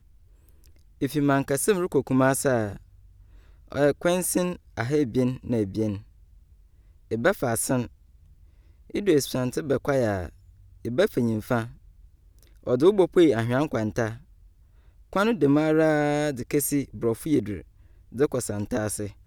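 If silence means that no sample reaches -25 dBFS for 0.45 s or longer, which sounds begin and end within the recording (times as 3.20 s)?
1.02–2.72 s
3.72–5.95 s
7.12–7.85 s
8.95–10.25 s
10.85–11.64 s
12.68–14.11 s
15.13–17.54 s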